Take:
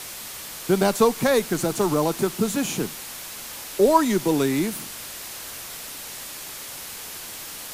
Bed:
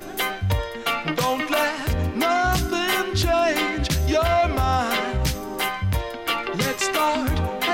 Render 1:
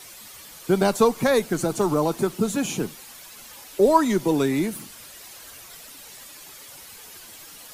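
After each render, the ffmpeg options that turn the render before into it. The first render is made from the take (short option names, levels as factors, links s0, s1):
-af "afftdn=nr=10:nf=-37"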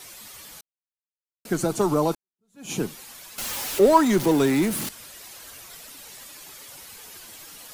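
-filter_complex "[0:a]asettb=1/sr,asplit=3[s0][s1][s2];[s0]atrim=end=3.384[s3];[s1]atrim=start=3.38:end=4.89,asetpts=PTS-STARTPTS,afade=t=in:d=0.004:c=qsin,afade=t=out:st=1.506:d=0.004:c=qsin,aeval=exprs='val(0)+0.5*0.0473*sgn(val(0))':c=same[s4];[s2]atrim=start=4.886[s5];[s3][s4]acrossfade=d=0.004:c1=hsin:c2=qsin[s6];[s6][s5]acrossfade=d=0.004:c1=qsin:c2=hsin,asplit=4[s7][s8][s9][s10];[s7]atrim=end=0.61,asetpts=PTS-STARTPTS,afade=t=out:st=0.606:d=0.004:c=hsin[s11];[s8]atrim=start=0.61:end=1.45,asetpts=PTS-STARTPTS,volume=0[s12];[s9]atrim=start=1.45:end=2.15,asetpts=PTS-STARTPTS,afade=t=in:d=0.004:c=hsin,afade=t=out:st=0.696:d=0.004:c=hsin[s13];[s10]atrim=start=2.15,asetpts=PTS-STARTPTS,afade=t=in:d=0.57:c=exp[s14];[s11][s12][s13][s14]concat=n=4:v=0:a=1"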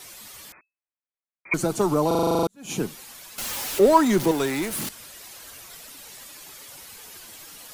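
-filter_complex "[0:a]asettb=1/sr,asplit=3[s0][s1][s2];[s0]atrim=end=0.524[s3];[s1]atrim=start=0.52:end=1.54,asetpts=PTS-STARTPTS,afade=t=in:d=0.004:c=qsin,afade=t=out:st=1.016:d=0.004:c=qsin,lowpass=f=2200:t=q:w=0.5098,lowpass=f=2200:t=q:w=0.6013,lowpass=f=2200:t=q:w=0.9,lowpass=f=2200:t=q:w=2.563,afreqshift=-2600[s4];[s2]atrim=start=1.536[s5];[s3][s4]acrossfade=d=0.004:c1=hsin:c2=qsin[s6];[s6][s5]acrossfade=d=0.004:c1=qsin:c2=hsin,asettb=1/sr,asplit=3[s7][s8][s9];[s7]atrim=end=4.314[s10];[s8]atrim=start=4.31:end=4.78,asetpts=PTS-STARTPTS,afade=t=in:d=0.004:c=qsin,afade=t=out:st=0.466:d=0.004:c=qsin,equalizer=f=200:t=o:w=1.6:g=-10[s11];[s9]atrim=start=4.776[s12];[s10][s11]acrossfade=d=0.004:c1=hsin:c2=qsin[s13];[s13][s12]acrossfade=d=0.004:c1=qsin:c2=hsin,asplit=11[s14][s15][s16][s17][s18][s19][s20][s21][s22][s23][s24];[s14]atrim=end=2.112[s25];[s15]atrim=start=2.068:end=2.112[s26];[s16]atrim=start=2.068:end=2.112[s27];[s17]atrim=start=2.068:end=2.112[s28];[s18]atrim=start=2.068:end=2.112[s29];[s19]atrim=start=2.068:end=2.112[s30];[s20]atrim=start=2.068:end=2.112[s31];[s21]atrim=start=2.068:end=2.112[s32];[s22]atrim=start=2.068:end=2.112[s33];[s23]atrim=start=2.068:end=2.112[s34];[s24]atrim=start=2.468[s35];[s25][s26]acrossfade=d=0.004:c1=hsin:c2=hsin[s36];[s36][s27]acrossfade=d=0.004:c1=hsin:c2=hsin[s37];[s37][s28]acrossfade=d=0.004:c1=hsin:c2=hsin[s38];[s38][s29]acrossfade=d=0.004:c1=hsin:c2=hsin[s39];[s39][s30]acrossfade=d=0.004:c1=hsin:c2=hsin[s40];[s40][s31]acrossfade=d=0.004:c1=hsin:c2=hsin[s41];[s41][s32]acrossfade=d=0.004:c1=hsin:c2=hsin[s42];[s42][s33]acrossfade=d=0.004:c1=hsin:c2=hsin[s43];[s43][s34]acrossfade=d=0.004:c1=hsin:c2=hsin[s44];[s44][s35]acrossfade=d=0.004:c1=hsin:c2=hsin"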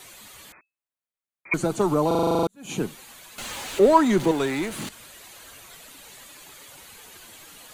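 -filter_complex "[0:a]acrossover=split=8200[s0][s1];[s1]acompressor=threshold=0.00355:ratio=4:attack=1:release=60[s2];[s0][s2]amix=inputs=2:normalize=0,equalizer=f=5300:t=o:w=0.3:g=-8.5"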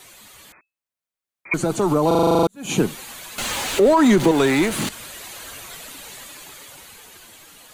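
-af "alimiter=limit=0.15:level=0:latency=1:release=79,dynaudnorm=f=370:g=9:m=2.82"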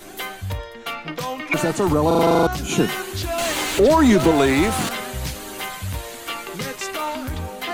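-filter_complex "[1:a]volume=0.531[s0];[0:a][s0]amix=inputs=2:normalize=0"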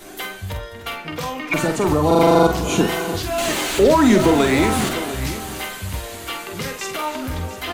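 -filter_complex "[0:a]asplit=2[s0][s1];[s1]adelay=46,volume=0.447[s2];[s0][s2]amix=inputs=2:normalize=0,aecho=1:1:298|695:0.188|0.224"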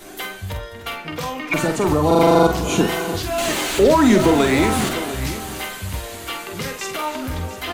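-af anull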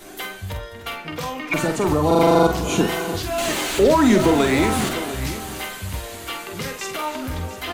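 -af "volume=0.841"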